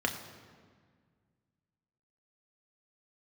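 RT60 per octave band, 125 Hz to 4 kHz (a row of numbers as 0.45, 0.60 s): 2.6, 2.4, 1.8, 1.7, 1.5, 1.2 s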